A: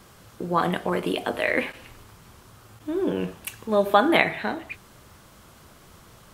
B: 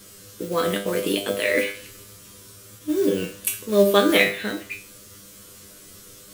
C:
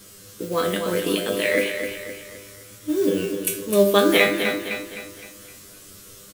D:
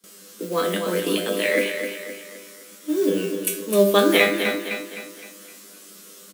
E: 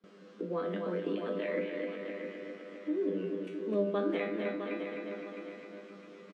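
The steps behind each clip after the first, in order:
drawn EQ curve 110 Hz 0 dB, 510 Hz +7 dB, 810 Hz −10 dB, 1,200 Hz −1 dB, 7,600 Hz +14 dB; noise that follows the level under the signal 19 dB; tuned comb filter 100 Hz, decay 0.33 s, harmonics all, mix 90%; level +7.5 dB
repeating echo 258 ms, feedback 44%, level −7.5 dB
Butterworth high-pass 170 Hz 96 dB per octave; noise gate with hold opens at −36 dBFS
downward compressor 2 to 1, threshold −36 dBFS, peak gain reduction 13.5 dB; head-to-tape spacing loss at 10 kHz 45 dB; repeating echo 660 ms, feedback 33%, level −8 dB

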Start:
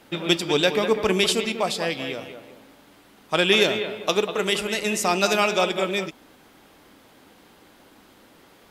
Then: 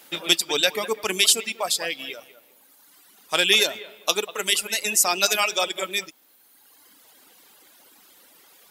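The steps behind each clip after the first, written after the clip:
RIAA equalisation recording
reverb reduction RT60 1.6 s
level −1.5 dB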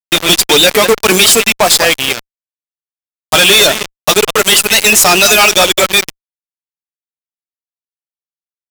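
fuzz pedal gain 39 dB, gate −33 dBFS
level +8.5 dB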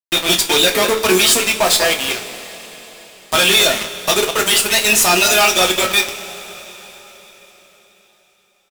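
double-tracking delay 27 ms −12.5 dB
coupled-rooms reverb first 0.22 s, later 4.5 s, from −20 dB, DRR 2.5 dB
level −7.5 dB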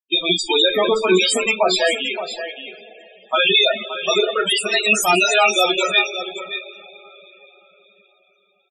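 spectral peaks only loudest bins 16
single-tap delay 573 ms −11 dB

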